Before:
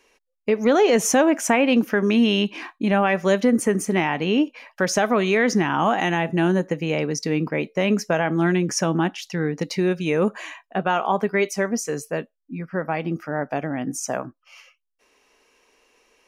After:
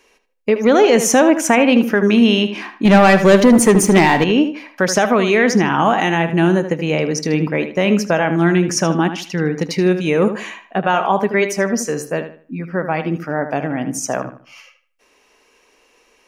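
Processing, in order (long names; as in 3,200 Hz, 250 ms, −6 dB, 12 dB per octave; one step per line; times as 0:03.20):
0:02.85–0:04.24: leveller curve on the samples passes 2
feedback echo with a low-pass in the loop 77 ms, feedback 30%, low-pass 4,400 Hz, level −10 dB
level +5 dB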